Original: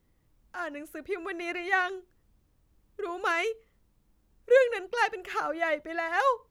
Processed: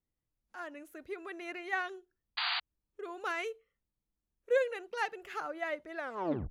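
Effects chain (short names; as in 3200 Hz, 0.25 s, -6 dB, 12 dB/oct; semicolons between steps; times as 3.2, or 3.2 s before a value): tape stop at the end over 0.55 s; spectral noise reduction 13 dB; painted sound noise, 2.37–2.6, 680–4800 Hz -25 dBFS; gain -8 dB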